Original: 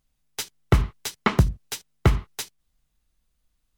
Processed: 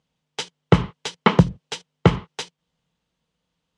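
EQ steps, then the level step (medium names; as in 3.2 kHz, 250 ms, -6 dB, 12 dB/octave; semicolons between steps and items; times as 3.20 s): distance through air 73 m; cabinet simulation 120–9500 Hz, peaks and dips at 170 Hz +9 dB, 490 Hz +9 dB, 920 Hz +6 dB, 3.1 kHz +6 dB; +3.0 dB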